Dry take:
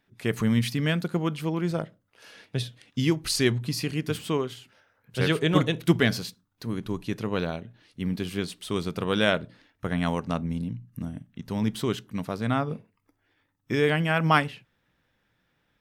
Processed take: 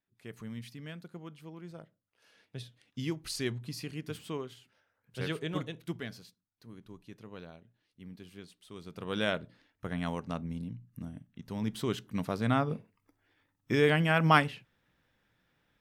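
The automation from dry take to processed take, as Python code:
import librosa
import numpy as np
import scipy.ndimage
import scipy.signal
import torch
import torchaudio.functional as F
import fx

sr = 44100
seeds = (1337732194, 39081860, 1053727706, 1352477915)

y = fx.gain(x, sr, db=fx.line((1.74, -19.0), (3.03, -11.0), (5.32, -11.0), (6.11, -19.0), (8.75, -19.0), (9.18, -8.0), (11.58, -8.0), (12.2, -2.0)))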